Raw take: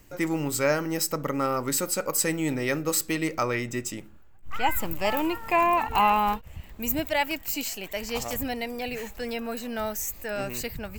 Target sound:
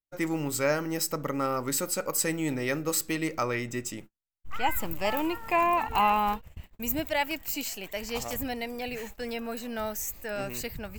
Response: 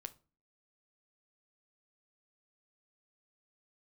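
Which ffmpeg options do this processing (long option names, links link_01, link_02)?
-af "agate=range=-44dB:threshold=-40dB:ratio=16:detection=peak,volume=-2.5dB"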